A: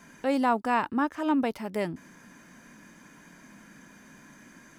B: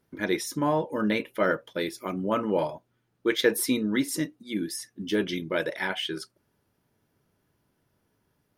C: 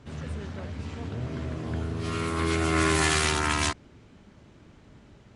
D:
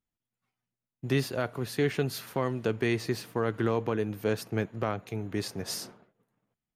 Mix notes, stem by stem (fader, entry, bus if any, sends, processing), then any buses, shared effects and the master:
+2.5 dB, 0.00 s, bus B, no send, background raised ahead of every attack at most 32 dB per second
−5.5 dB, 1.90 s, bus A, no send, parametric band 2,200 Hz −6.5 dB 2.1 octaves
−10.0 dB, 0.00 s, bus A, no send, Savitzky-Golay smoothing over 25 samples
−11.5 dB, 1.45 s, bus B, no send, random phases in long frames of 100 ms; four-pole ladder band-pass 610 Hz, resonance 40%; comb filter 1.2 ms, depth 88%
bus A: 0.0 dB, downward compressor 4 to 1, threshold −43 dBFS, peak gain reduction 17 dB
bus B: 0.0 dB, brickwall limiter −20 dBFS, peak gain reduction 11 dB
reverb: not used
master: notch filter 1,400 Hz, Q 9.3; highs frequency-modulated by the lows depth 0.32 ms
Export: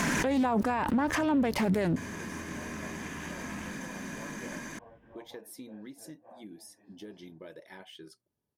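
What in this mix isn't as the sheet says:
stem A +2.5 dB → +11.5 dB
stem B −5.5 dB → −13.5 dB

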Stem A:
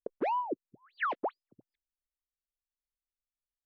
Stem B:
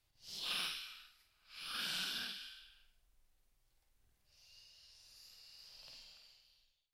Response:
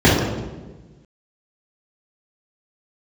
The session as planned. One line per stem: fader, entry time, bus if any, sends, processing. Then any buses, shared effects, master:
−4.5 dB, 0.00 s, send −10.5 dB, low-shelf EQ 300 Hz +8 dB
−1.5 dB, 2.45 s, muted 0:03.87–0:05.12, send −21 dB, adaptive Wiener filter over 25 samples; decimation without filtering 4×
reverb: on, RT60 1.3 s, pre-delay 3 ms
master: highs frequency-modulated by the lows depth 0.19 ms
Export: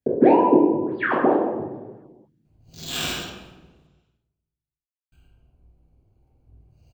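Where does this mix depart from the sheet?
stem B −1.5 dB → +9.5 dB
master: missing highs frequency-modulated by the lows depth 0.19 ms

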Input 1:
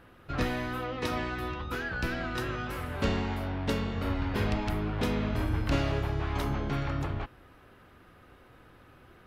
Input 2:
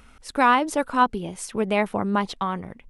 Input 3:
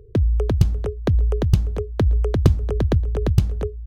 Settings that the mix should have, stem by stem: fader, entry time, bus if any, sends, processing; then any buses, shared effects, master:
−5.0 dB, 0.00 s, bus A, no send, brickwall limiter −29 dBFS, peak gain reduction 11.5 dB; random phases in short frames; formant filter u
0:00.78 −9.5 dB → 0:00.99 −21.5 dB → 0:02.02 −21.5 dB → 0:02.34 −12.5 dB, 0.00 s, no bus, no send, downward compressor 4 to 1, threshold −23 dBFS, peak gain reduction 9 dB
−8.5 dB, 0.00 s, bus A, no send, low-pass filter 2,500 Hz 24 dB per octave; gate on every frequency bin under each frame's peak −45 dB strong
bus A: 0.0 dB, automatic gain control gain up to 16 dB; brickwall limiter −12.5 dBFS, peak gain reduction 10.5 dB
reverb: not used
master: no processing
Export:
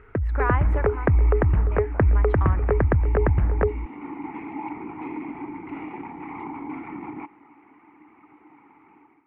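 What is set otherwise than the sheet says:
stem 3: missing gate on every frequency bin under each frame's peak −45 dB strong
master: extra drawn EQ curve 210 Hz 0 dB, 1,900 Hz +13 dB, 5,100 Hz −25 dB

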